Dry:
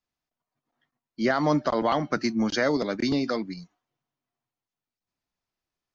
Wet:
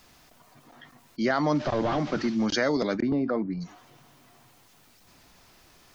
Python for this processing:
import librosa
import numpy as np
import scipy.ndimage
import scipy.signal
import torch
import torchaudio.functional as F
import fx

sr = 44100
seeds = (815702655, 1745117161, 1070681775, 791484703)

y = fx.delta_mod(x, sr, bps=32000, step_db=-41.0, at=(1.55, 2.46))
y = fx.lowpass(y, sr, hz=1200.0, slope=12, at=(3.0, 3.6), fade=0.02)
y = fx.env_flatten(y, sr, amount_pct=50)
y = y * 10.0 ** (-2.5 / 20.0)